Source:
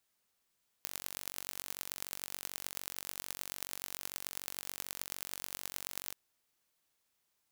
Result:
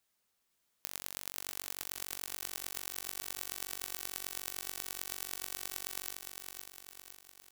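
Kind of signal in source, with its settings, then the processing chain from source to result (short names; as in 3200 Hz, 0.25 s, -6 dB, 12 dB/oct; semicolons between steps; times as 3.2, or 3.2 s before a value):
pulse train 46.8/s, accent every 5, -10 dBFS 5.28 s
on a send: feedback echo 0.51 s, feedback 53%, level -5 dB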